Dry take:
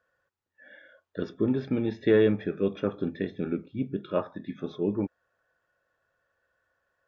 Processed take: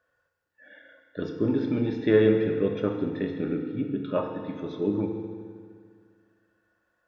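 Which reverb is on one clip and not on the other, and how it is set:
feedback delay network reverb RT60 2 s, low-frequency decay 1.05×, high-frequency decay 0.85×, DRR 3 dB

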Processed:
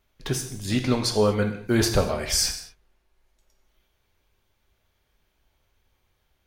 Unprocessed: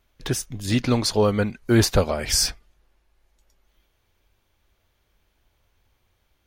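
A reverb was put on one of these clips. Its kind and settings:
reverb whose tail is shaped and stops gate 260 ms falling, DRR 5 dB
level −3 dB

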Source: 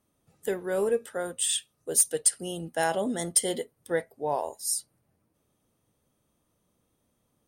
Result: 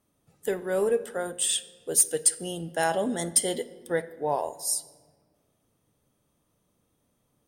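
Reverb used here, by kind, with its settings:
rectangular room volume 1,600 cubic metres, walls mixed, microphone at 0.34 metres
level +1 dB

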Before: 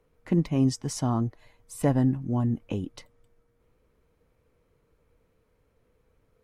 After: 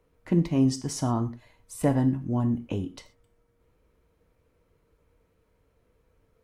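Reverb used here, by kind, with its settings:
reverb whose tail is shaped and stops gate 150 ms falling, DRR 8 dB

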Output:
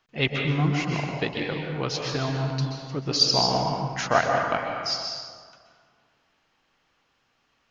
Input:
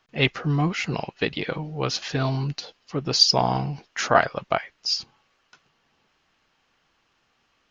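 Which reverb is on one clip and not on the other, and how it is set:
dense smooth reverb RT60 1.8 s, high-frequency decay 0.55×, pre-delay 115 ms, DRR 1 dB
level −3.5 dB

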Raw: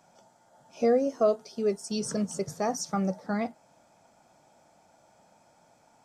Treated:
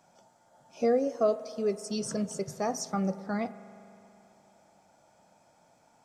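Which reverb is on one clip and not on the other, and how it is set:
spring reverb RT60 2.9 s, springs 41 ms, chirp 30 ms, DRR 14.5 dB
level −2 dB

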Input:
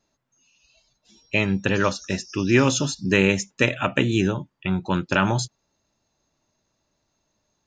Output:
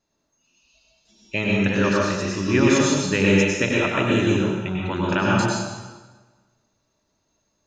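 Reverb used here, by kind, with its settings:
dense smooth reverb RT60 1.3 s, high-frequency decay 0.85×, pre-delay 85 ms, DRR −4 dB
level −4 dB

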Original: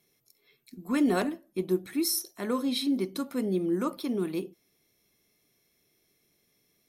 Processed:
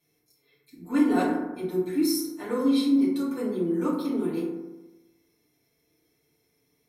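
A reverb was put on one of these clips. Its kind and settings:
feedback delay network reverb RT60 1.1 s, low-frequency decay 1.05×, high-frequency decay 0.35×, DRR −9.5 dB
level −9 dB

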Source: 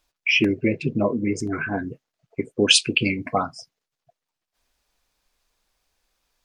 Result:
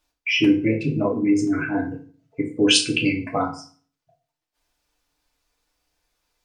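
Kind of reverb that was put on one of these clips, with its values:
feedback delay network reverb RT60 0.43 s, low-frequency decay 1.2×, high-frequency decay 0.8×, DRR −1 dB
level −4 dB

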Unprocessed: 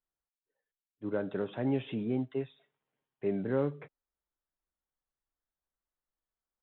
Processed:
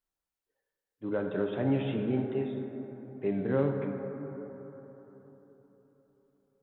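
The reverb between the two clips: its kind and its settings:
dense smooth reverb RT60 4 s, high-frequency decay 0.3×, DRR 3 dB
level +1.5 dB

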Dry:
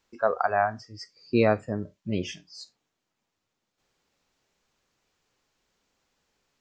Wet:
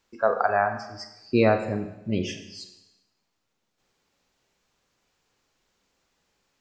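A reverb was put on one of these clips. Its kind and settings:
four-comb reverb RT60 0.96 s, combs from 32 ms, DRR 7.5 dB
level +1.5 dB

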